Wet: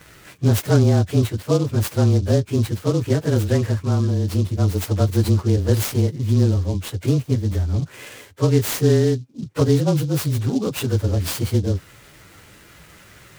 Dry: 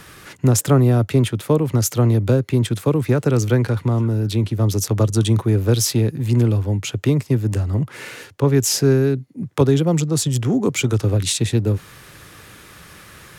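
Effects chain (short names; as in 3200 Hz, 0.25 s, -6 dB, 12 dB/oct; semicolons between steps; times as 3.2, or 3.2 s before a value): inharmonic rescaling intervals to 108%; noise-modulated delay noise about 4600 Hz, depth 0.039 ms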